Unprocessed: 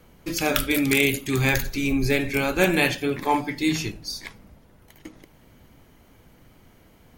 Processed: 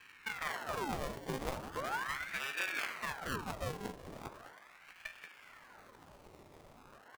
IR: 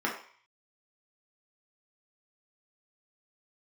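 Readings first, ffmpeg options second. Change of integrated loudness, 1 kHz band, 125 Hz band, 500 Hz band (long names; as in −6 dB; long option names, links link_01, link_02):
−17.0 dB, −11.0 dB, −19.0 dB, −17.5 dB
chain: -filter_complex "[0:a]highpass=230,acrossover=split=3200[link_01][link_02];[link_02]acompressor=threshold=-36dB:ratio=4:attack=1:release=60[link_03];[link_01][link_03]amix=inputs=2:normalize=0,lowpass=5700,highshelf=frequency=3000:gain=-6.5,acompressor=threshold=-44dB:ratio=2.5,acrusher=bits=2:mode=log:mix=0:aa=0.000001,aecho=1:1:193:0.266,acrusher=samples=29:mix=1:aa=0.000001:lfo=1:lforange=17.4:lforate=0.31,asplit=2[link_04][link_05];[1:a]atrim=start_sample=2205,asetrate=23814,aresample=44100[link_06];[link_05][link_06]afir=irnorm=-1:irlink=0,volume=-21.5dB[link_07];[link_04][link_07]amix=inputs=2:normalize=0,aeval=exprs='val(0)*sin(2*PI*1100*n/s+1100*0.9/0.39*sin(2*PI*0.39*n/s))':channel_layout=same,volume=1.5dB"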